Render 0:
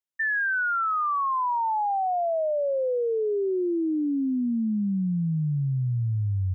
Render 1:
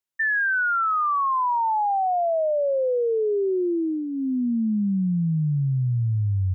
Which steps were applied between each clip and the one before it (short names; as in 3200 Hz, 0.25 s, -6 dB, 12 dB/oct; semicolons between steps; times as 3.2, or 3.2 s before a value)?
dynamic EQ 290 Hz, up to -7 dB, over -44 dBFS, Q 8; gain +3 dB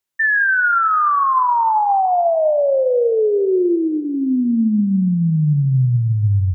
plate-style reverb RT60 1.9 s, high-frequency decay 0.95×, DRR 12 dB; gain +6.5 dB